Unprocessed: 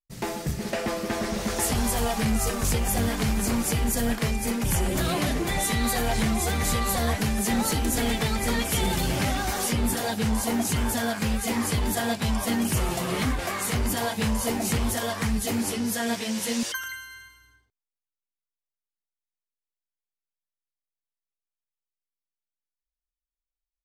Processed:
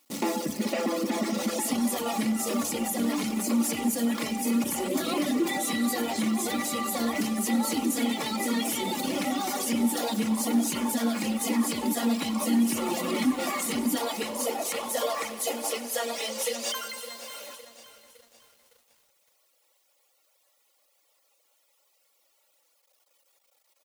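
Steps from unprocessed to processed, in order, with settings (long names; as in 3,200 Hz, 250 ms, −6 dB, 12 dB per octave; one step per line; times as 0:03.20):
converter with a step at zero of −32.5 dBFS
noise gate with hold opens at −36 dBFS
low-shelf EQ 100 Hz −11 dB
notch filter 1,600 Hz, Q 5.6
comb filter 3.6 ms, depth 47%
brickwall limiter −20.5 dBFS, peak gain reduction 7 dB
reverb reduction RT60 1.6 s
on a send: echo machine with several playback heads 95 ms, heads first and second, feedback 57%, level −18 dB
on the sum: high-pass filter sweep 250 Hz → 520 Hz, 0:13.93–0:14.46
feedback echo at a low word length 560 ms, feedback 55%, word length 8 bits, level −13.5 dB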